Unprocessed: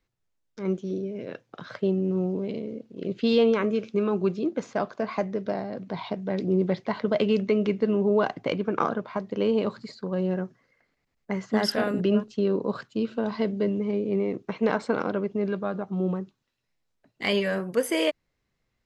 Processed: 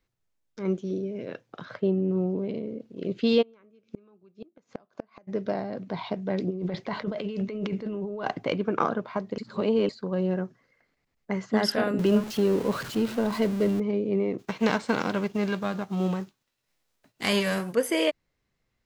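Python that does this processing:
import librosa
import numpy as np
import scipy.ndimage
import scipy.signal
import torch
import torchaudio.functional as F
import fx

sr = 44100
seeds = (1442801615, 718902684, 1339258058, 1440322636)

y = fx.high_shelf(x, sr, hz=3400.0, db=-8.5, at=(1.65, 2.8))
y = fx.gate_flip(y, sr, shuts_db=-22.0, range_db=-33, at=(3.41, 5.27), fade=0.02)
y = fx.over_compress(y, sr, threshold_db=-29.0, ratio=-1.0, at=(6.49, 8.46), fade=0.02)
y = fx.zero_step(y, sr, step_db=-32.5, at=(11.99, 13.8))
y = fx.envelope_flatten(y, sr, power=0.6, at=(14.38, 17.72), fade=0.02)
y = fx.edit(y, sr, fx.reverse_span(start_s=9.38, length_s=0.51), tone=tone)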